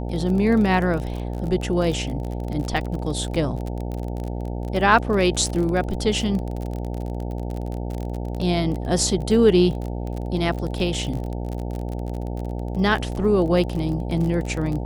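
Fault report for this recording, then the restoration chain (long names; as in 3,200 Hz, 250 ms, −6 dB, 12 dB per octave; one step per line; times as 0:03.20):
mains buzz 60 Hz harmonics 15 −28 dBFS
surface crackle 29 per second −27 dBFS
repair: click removal
hum removal 60 Hz, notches 15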